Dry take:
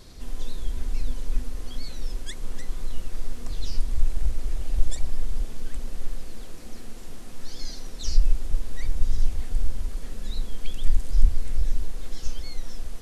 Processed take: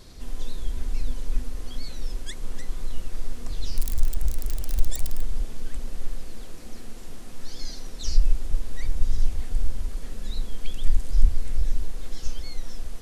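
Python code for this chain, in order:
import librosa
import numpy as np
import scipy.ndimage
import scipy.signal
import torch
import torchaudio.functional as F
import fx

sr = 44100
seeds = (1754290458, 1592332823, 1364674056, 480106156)

y = fx.crossing_spikes(x, sr, level_db=-20.0, at=(3.76, 5.21))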